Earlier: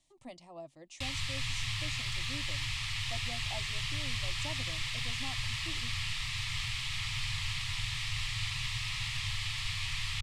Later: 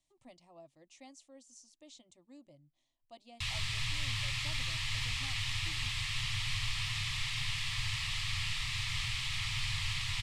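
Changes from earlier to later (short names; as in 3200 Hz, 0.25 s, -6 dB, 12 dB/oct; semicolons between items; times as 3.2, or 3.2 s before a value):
speech -8.5 dB; background: entry +2.40 s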